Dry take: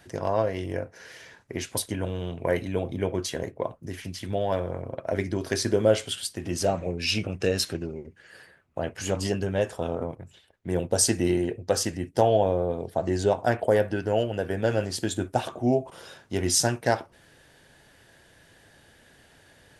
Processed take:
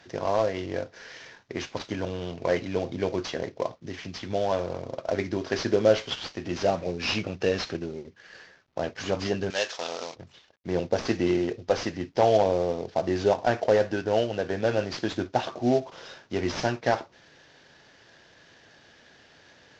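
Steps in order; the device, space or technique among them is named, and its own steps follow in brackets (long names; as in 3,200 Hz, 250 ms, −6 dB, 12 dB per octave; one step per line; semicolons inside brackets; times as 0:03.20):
early wireless headset (high-pass filter 180 Hz 6 dB per octave; variable-slope delta modulation 32 kbit/s)
0:09.50–0:10.16: meter weighting curve ITU-R 468
level +1.5 dB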